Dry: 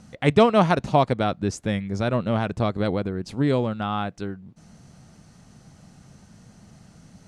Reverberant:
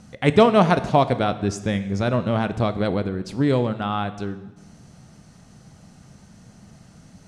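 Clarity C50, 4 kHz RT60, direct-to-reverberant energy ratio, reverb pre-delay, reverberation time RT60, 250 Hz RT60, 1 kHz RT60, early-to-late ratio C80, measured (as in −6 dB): 13.5 dB, 1.0 s, 11.5 dB, 7 ms, 1.1 s, 1.2 s, 1.1 s, 15.5 dB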